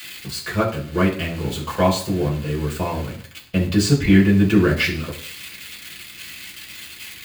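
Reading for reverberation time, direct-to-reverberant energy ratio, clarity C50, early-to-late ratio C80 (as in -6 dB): 0.50 s, -5.5 dB, 9.5 dB, 13.5 dB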